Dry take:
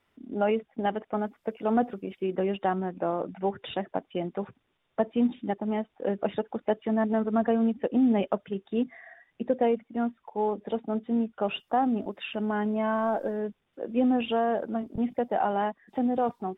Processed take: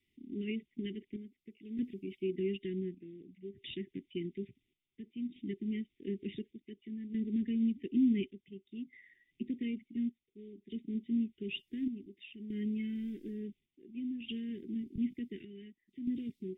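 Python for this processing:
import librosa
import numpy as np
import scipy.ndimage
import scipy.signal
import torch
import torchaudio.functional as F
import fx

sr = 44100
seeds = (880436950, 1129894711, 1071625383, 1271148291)

y = fx.chopper(x, sr, hz=0.56, depth_pct=65, duty_pct=65)
y = scipy.signal.sosfilt(scipy.signal.cheby1(5, 1.0, [390.0, 2000.0], 'bandstop', fs=sr, output='sos'), y)
y = y * 10.0 ** (-5.0 / 20.0)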